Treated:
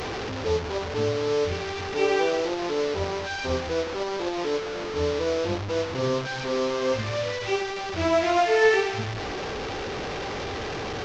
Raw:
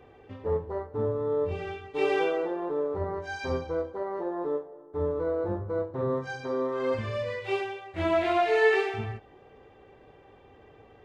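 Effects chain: delta modulation 32 kbps, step -28.5 dBFS; gain +3 dB

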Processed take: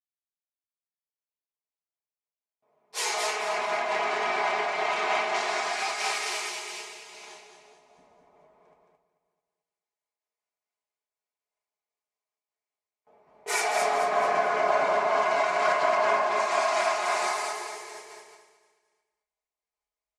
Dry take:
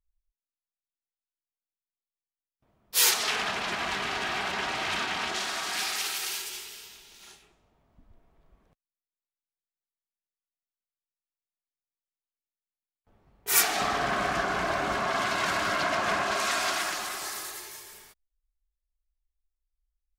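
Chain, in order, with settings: opening faded in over 6.10 s; speaker cabinet 200–9200 Hz, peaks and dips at 220 Hz -5 dB, 450 Hz +8 dB, 660 Hz +3 dB, 1000 Hz +7 dB, 2200 Hz +7 dB, 3400 Hz -3 dB; comb 4.8 ms, depth 65%; feedback echo 0.22 s, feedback 40%, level -4.5 dB; shoebox room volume 51 m³, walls mixed, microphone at 0.39 m; compressor, threshold -23 dBFS, peak gain reduction 8.5 dB; bell 720 Hz +9.5 dB 0.76 oct; noise-modulated level, depth 65%

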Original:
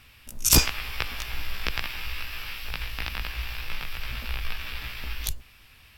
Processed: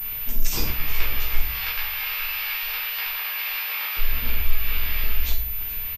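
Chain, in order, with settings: 1.39–3.97 HPF 750 Hz 12 dB/oct; compressor 3:1, threshold -41 dBFS, peak gain reduction 20.5 dB; feedback echo 0.43 s, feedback 53%, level -17 dB; shoebox room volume 100 m³, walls mixed, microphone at 2.1 m; pulse-width modulation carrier 14000 Hz; gain +4.5 dB

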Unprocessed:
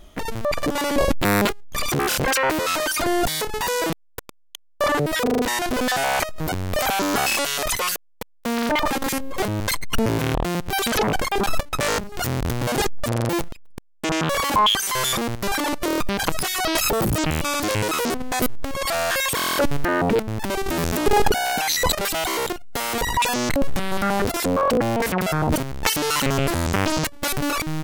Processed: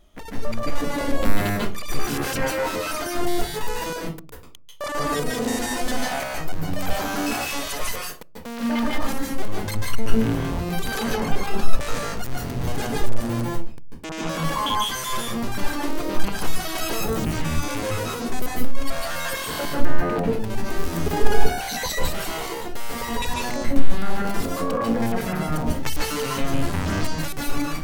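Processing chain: 4.84–5.91 bell 8200 Hz +7 dB 1.6 oct; reverb RT60 0.35 s, pre-delay 0.14 s, DRR -3 dB; gain -10 dB

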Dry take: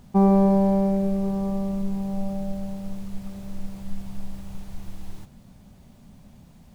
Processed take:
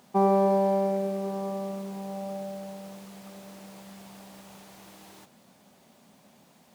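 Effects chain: HPF 370 Hz 12 dB/oct; gain +1.5 dB

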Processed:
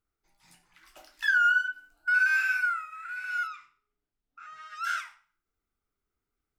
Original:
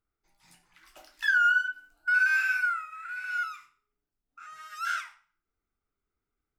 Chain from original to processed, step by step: 3.47–4.84 LPF 4800 Hz 12 dB/oct

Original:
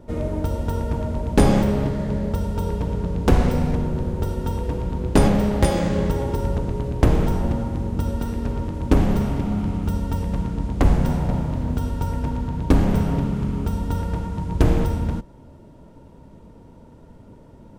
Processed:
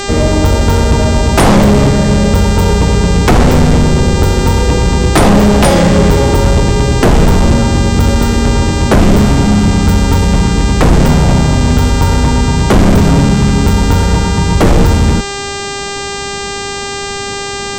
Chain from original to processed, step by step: buzz 400 Hz, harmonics 21, -36 dBFS -3 dB/oct; sine folder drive 12 dB, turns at -2.5 dBFS

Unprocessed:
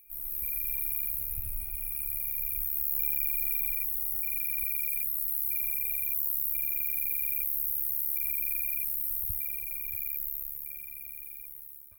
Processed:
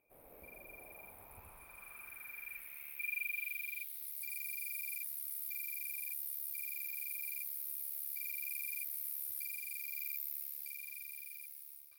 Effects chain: vocal rider within 5 dB 2 s; band-pass sweep 590 Hz -> 5000 Hz, 0.68–4.26; gain +9.5 dB

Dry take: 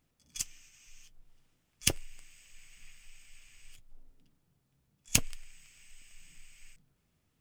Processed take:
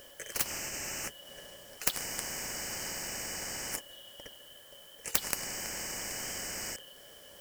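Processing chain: four-band scrambler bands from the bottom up 3412; bell 3600 Hz -15 dB 1.1 oct; small resonant body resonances 560/1700 Hz, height 16 dB, ringing for 45 ms; spectral compressor 10:1

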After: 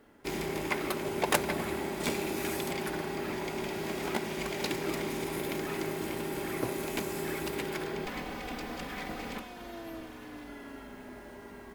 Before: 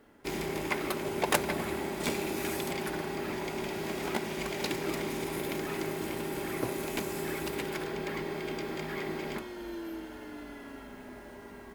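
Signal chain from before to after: 8.05–10.48 minimum comb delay 4 ms

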